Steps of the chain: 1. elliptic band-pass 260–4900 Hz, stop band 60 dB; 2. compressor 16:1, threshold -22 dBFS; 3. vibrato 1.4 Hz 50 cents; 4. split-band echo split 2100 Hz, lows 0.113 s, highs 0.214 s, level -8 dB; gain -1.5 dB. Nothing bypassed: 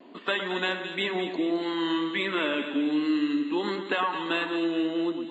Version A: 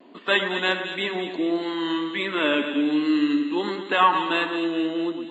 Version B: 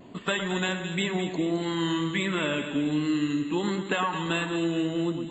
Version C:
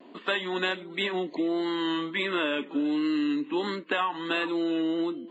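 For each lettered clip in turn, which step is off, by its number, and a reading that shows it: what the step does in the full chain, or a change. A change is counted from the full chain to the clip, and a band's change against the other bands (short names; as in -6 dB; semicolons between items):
2, mean gain reduction 2.5 dB; 1, 125 Hz band +14.0 dB; 4, echo-to-direct -6.5 dB to none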